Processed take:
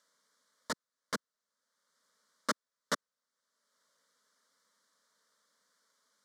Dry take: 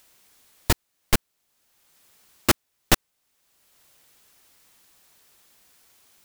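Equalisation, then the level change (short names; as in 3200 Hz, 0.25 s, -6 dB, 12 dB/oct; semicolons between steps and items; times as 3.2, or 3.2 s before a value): BPF 190–5300 Hz; low shelf 380 Hz -6 dB; fixed phaser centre 520 Hz, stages 8; -6.5 dB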